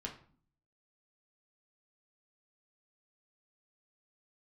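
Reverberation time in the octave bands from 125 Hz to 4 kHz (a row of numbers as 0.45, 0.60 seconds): 0.80, 0.75, 0.45, 0.45, 0.40, 0.35 seconds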